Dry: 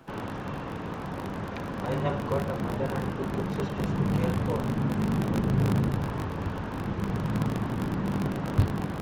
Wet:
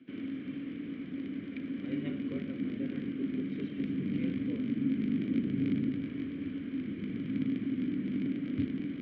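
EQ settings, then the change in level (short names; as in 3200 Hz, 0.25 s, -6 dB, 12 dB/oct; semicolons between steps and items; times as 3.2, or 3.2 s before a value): vowel filter i; air absorption 180 m; +7.0 dB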